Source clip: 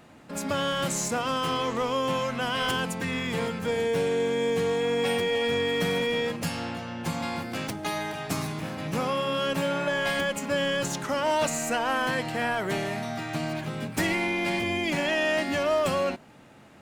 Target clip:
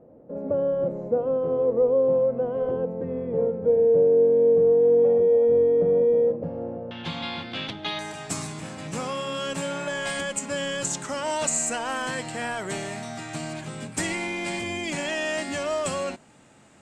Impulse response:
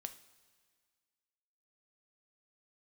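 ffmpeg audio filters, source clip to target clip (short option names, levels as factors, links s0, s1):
-af "asetnsamples=n=441:p=0,asendcmd='6.91 lowpass f 3500;7.99 lowpass f 8000',lowpass=f=510:t=q:w=4.9,volume=0.708"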